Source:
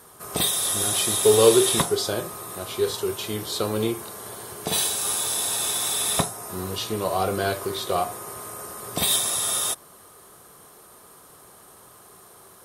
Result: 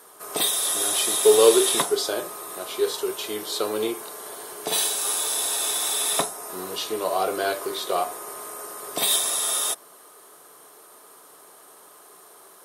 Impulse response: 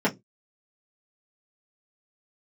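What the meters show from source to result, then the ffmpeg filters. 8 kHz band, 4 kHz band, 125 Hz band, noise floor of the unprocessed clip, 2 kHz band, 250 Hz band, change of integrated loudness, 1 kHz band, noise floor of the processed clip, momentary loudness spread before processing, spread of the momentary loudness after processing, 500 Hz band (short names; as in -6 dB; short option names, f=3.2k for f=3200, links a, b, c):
0.0 dB, 0.0 dB, -16.0 dB, -50 dBFS, +0.5 dB, -3.0 dB, 0.0 dB, +0.5 dB, -50 dBFS, 15 LU, 15 LU, +0.5 dB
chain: -filter_complex "[0:a]highpass=330,asplit=2[a][b];[1:a]atrim=start_sample=2205[c];[b][c]afir=irnorm=-1:irlink=0,volume=-29.5dB[d];[a][d]amix=inputs=2:normalize=0"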